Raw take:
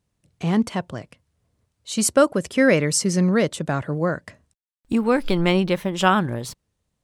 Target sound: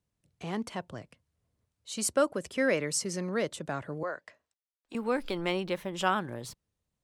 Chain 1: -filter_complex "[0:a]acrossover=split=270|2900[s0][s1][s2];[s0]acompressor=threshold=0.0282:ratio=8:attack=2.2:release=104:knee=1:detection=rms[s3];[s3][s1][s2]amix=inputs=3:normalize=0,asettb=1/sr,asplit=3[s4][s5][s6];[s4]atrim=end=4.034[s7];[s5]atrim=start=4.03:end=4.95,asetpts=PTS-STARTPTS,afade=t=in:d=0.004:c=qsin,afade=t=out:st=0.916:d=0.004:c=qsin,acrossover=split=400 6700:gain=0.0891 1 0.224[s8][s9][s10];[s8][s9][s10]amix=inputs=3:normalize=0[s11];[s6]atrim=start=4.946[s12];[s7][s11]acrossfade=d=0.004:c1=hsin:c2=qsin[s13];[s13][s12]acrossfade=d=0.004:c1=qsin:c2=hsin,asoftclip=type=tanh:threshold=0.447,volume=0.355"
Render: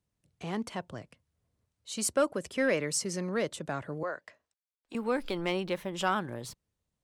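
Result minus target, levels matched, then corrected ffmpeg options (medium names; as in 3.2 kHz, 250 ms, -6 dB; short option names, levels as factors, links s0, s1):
saturation: distortion +11 dB
-filter_complex "[0:a]acrossover=split=270|2900[s0][s1][s2];[s0]acompressor=threshold=0.0282:ratio=8:attack=2.2:release=104:knee=1:detection=rms[s3];[s3][s1][s2]amix=inputs=3:normalize=0,asettb=1/sr,asplit=3[s4][s5][s6];[s4]atrim=end=4.034[s7];[s5]atrim=start=4.03:end=4.95,asetpts=PTS-STARTPTS,afade=t=in:d=0.004:c=qsin,afade=t=out:st=0.916:d=0.004:c=qsin,acrossover=split=400 6700:gain=0.0891 1 0.224[s8][s9][s10];[s8][s9][s10]amix=inputs=3:normalize=0[s11];[s6]atrim=start=4.946[s12];[s7][s11]acrossfade=d=0.004:c1=hsin:c2=qsin[s13];[s13][s12]acrossfade=d=0.004:c1=qsin:c2=hsin,asoftclip=type=tanh:threshold=1,volume=0.355"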